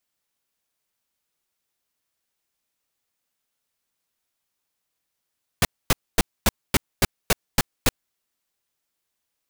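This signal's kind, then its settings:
noise bursts pink, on 0.03 s, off 0.25 s, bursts 9, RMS −16.5 dBFS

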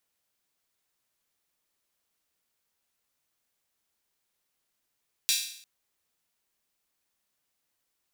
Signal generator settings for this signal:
open synth hi-hat length 0.35 s, high-pass 3,400 Hz, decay 0.63 s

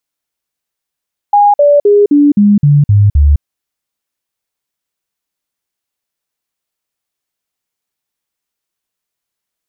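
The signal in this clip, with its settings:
stepped sweep 820 Hz down, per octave 2, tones 8, 0.21 s, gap 0.05 s −3.5 dBFS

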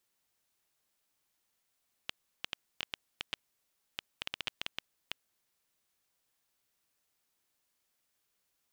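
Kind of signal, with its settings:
Geiger counter clicks 5.9 per second −17 dBFS 3.32 s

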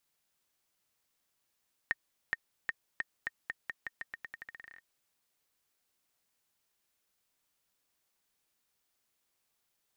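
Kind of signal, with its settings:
bouncing ball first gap 0.42 s, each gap 0.86, 1,840 Hz, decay 31 ms −16.5 dBFS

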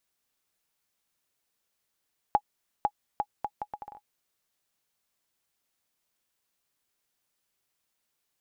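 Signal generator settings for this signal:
bouncing ball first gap 0.50 s, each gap 0.7, 832 Hz, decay 60 ms −10.5 dBFS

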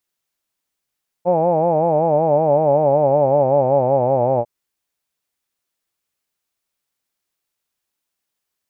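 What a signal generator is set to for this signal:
vowel by formant synthesis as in hawed, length 3.20 s, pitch 171 Hz, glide −5.5 semitones, vibrato depth 1.1 semitones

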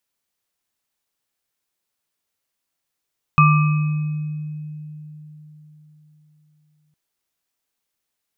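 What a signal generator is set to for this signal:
inharmonic partials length 3.56 s, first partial 152 Hz, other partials 1,180/2,540 Hz, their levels 1/−7 dB, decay 4.19 s, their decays 1.00/1.57 s, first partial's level −11 dB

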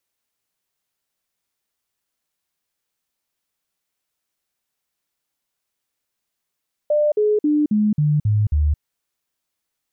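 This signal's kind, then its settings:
stepped sweep 597 Hz down, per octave 2, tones 7, 0.22 s, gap 0.05 s −14 dBFS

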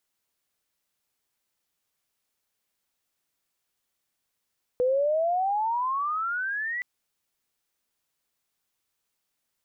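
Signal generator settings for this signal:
glide logarithmic 490 Hz → 2,000 Hz −20 dBFS → −28 dBFS 2.02 s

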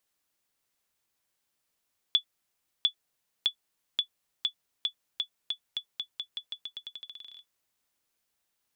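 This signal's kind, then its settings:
bouncing ball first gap 0.70 s, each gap 0.87, 3,440 Hz, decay 92 ms −12.5 dBFS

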